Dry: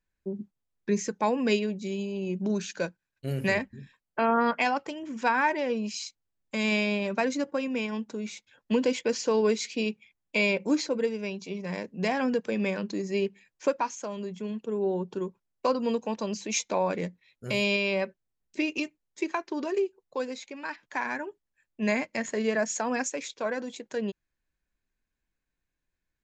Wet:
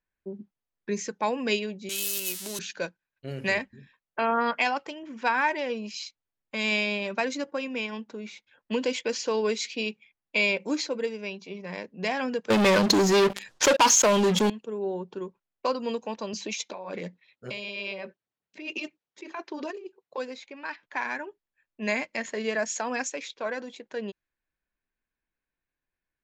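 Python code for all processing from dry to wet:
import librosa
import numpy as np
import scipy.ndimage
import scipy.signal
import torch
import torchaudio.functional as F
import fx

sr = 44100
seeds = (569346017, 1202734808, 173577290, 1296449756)

y = fx.chain(x, sr, fx.crossing_spikes(level_db=-28.5),
    fx.tilt_eq(slope=4.5),
    fx.notch(hz=2400.0, q=21.0), at=(1.89, 2.59))
y = fx.chain(y, sr, fx.peak_eq(hz=2300.0, db=-8.0, octaves=0.53),
    fx.leveller(passes=5),
    fx.env_flatten(amount_pct=50), at=(12.5, 14.5))
y = fx.chain(y, sr, fx.highpass(hz=120.0, slope=12),
    fx.over_compress(threshold_db=-33.0, ratio=-1.0),
    fx.filter_lfo_notch(shape='sine', hz=8.8, low_hz=270.0, high_hz=2300.0, q=1.6), at=(16.33, 20.18))
y = fx.low_shelf(y, sr, hz=270.0, db=-8.0)
y = fx.env_lowpass(y, sr, base_hz=2900.0, full_db=-23.0)
y = fx.dynamic_eq(y, sr, hz=3300.0, q=1.1, threshold_db=-43.0, ratio=4.0, max_db=4)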